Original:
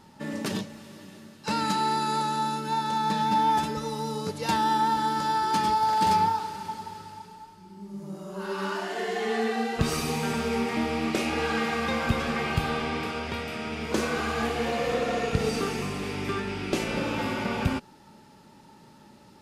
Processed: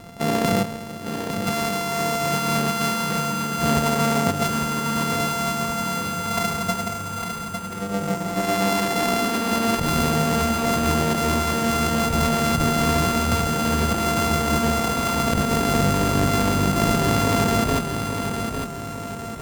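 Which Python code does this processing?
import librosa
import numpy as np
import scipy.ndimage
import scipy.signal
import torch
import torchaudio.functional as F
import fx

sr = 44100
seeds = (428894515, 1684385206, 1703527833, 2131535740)

p1 = np.r_[np.sort(x[:len(x) // 64 * 64].reshape(-1, 64), axis=1).ravel(), x[len(x) // 64 * 64:]]
p2 = fx.over_compress(p1, sr, threshold_db=-30.0, ratio=-1.0)
p3 = fx.low_shelf(p2, sr, hz=400.0, db=9.0)
p4 = fx.formant_shift(p3, sr, semitones=5)
p5 = p4 + fx.echo_feedback(p4, sr, ms=854, feedback_pct=48, wet_db=-6.5, dry=0)
y = p5 * 10.0 ** (4.5 / 20.0)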